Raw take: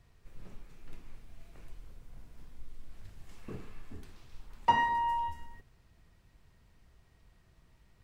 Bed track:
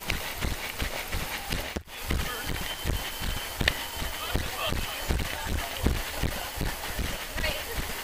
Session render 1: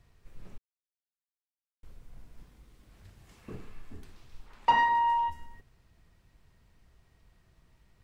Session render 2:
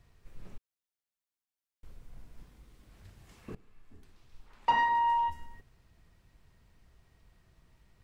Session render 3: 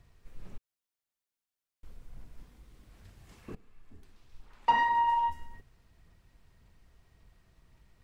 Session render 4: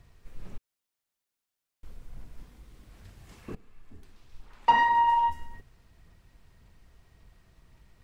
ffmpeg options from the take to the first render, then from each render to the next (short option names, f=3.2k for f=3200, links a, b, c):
-filter_complex "[0:a]asettb=1/sr,asplit=3[a][b][c];[a]atrim=end=2.424[d];[b]atrim=start=2.42:end=3.53,asetpts=PTS-STARTPTS,afade=t=in:d=0.004:c=qsin,afade=t=out:st=1.106:d=0.004:c=qsin,highpass=45[e];[c]atrim=start=3.526[f];[d][e]acrossfade=d=0.004:c1=hsin:c2=qsin[g];[g][f]acrossfade=d=0.004:c1=qsin:c2=hsin,asettb=1/sr,asplit=3[h][i][j];[h]atrim=end=4.464[k];[i]atrim=start=4.46:end=5.3,asetpts=PTS-STARTPTS,afade=t=in:d=0.004:c=qsin,afade=t=out:st=0.836:d=0.004:c=qsin,asplit=2[l][m];[m]highpass=f=720:p=1,volume=12dB,asoftclip=type=tanh:threshold=-13dB[n];[l][n]amix=inputs=2:normalize=0,lowpass=f=2.8k:p=1,volume=-6dB[o];[j]atrim=start=5.296[p];[k][o]acrossfade=d=0.004:c1=hsin:c2=qsin[q];[q][p]acrossfade=d=0.004:c1=qsin:c2=hsin,asplit=3[r][s][t];[r]atrim=end=0.58,asetpts=PTS-STARTPTS,afade=t=out:st=0.576:d=0.004:c=hsin[u];[s]atrim=start=0.58:end=1.83,asetpts=PTS-STARTPTS,volume=0[v];[t]atrim=start=1.83,asetpts=PTS-STARTPTS,afade=t=in:d=0.004:c=hsin[w];[u][v][w]concat=n=3:v=0:a=1"
-filter_complex "[0:a]asplit=2[a][b];[a]atrim=end=3.55,asetpts=PTS-STARTPTS,afade=t=out:st=3.546:d=0.004:c=hsin:silence=0.125893[c];[b]atrim=start=3.55,asetpts=PTS-STARTPTS,afade=t=in:d=1.75:silence=0.125893[d];[c][d]concat=n=2:v=0:a=1"
-af "aphaser=in_gain=1:out_gain=1:delay=4.4:decay=0.22:speed=1.8:type=sinusoidal"
-af "volume=4dB"